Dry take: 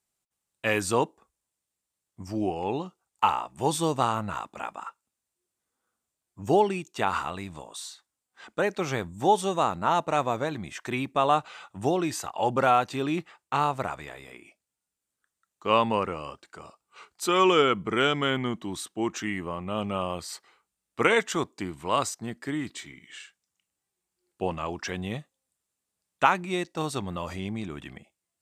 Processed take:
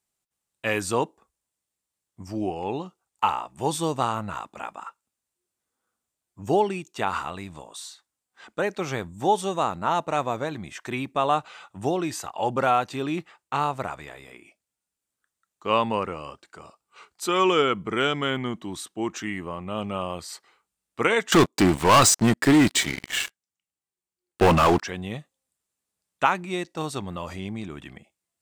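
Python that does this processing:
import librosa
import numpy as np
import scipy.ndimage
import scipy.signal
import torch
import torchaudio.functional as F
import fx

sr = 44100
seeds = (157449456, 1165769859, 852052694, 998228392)

y = fx.leveller(x, sr, passes=5, at=(21.32, 24.82))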